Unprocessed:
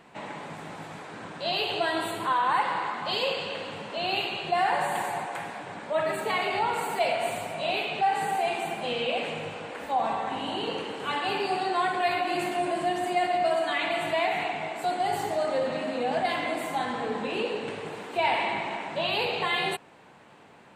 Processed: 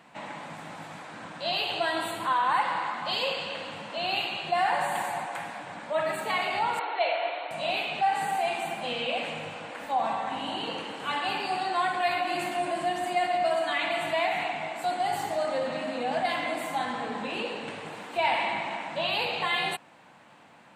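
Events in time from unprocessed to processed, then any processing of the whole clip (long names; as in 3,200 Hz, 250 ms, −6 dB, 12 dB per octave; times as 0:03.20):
0:06.79–0:07.51: linear-phase brick-wall band-pass 290–4,400 Hz
whole clip: high-pass filter 140 Hz 6 dB per octave; parametric band 410 Hz −10.5 dB 0.36 octaves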